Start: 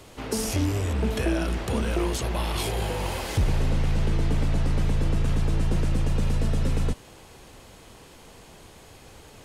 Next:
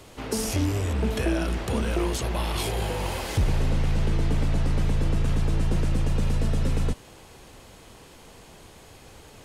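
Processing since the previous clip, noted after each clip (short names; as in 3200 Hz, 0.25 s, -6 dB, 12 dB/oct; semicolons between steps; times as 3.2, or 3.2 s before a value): nothing audible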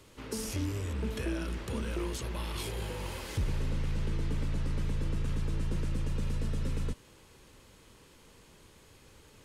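bell 720 Hz -10.5 dB 0.35 oct; gain -8.5 dB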